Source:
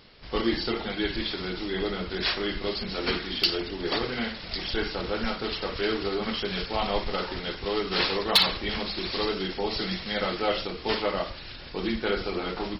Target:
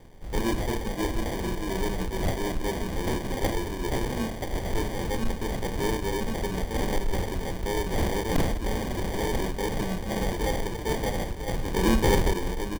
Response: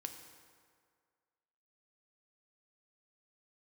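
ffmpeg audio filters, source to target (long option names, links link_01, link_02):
-filter_complex "[0:a]asuperstop=centerf=670:order=8:qfactor=4.3,aecho=1:1:986:0.299,acrusher=samples=33:mix=1:aa=0.000001,lowshelf=frequency=80:gain=11.5,asoftclip=type=tanh:threshold=-18dB,asettb=1/sr,asplit=3[link_01][link_02][link_03];[link_01]atrim=end=11.484[link_04];[link_02]atrim=start=11.48:end=12.34,asetpts=PTS-STARTPTS,afade=type=in:duration=0.004:curve=qsin,afade=type=out:start_time=0.856:duration=0.004:curve=qsin,acontrast=63[link_05];[link_03]atrim=start=12.336[link_06];[link_04][link_05]acrossfade=duration=0.004:curve1=hsin:curve2=qsin[link_07];[link_07][link_06]acrossfade=duration=0.004:curve1=qsin:curve2=hsin"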